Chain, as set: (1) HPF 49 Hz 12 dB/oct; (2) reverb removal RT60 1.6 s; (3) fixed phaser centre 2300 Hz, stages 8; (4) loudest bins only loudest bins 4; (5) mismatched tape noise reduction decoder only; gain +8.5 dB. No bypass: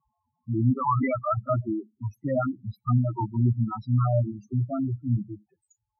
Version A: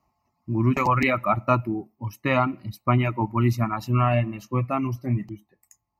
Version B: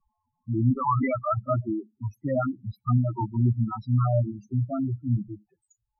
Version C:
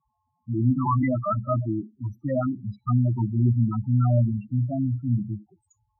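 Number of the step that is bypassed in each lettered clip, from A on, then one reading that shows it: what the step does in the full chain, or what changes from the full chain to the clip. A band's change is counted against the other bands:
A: 4, crest factor change +3.0 dB; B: 1, momentary loudness spread change +1 LU; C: 2, 1 kHz band -4.0 dB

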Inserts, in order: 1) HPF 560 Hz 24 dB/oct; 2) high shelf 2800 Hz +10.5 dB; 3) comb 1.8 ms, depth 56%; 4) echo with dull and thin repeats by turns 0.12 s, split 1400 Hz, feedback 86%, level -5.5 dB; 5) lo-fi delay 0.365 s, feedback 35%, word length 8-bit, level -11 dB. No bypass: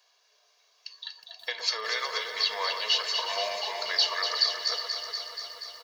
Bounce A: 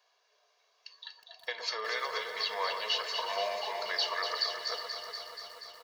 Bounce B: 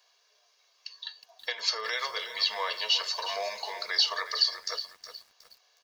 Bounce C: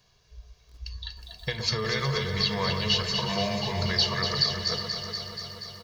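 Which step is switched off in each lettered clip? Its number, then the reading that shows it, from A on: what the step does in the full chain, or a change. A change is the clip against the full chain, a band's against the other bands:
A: 2, 8 kHz band -6.0 dB; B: 4, momentary loudness spread change +2 LU; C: 1, 500 Hz band +5.0 dB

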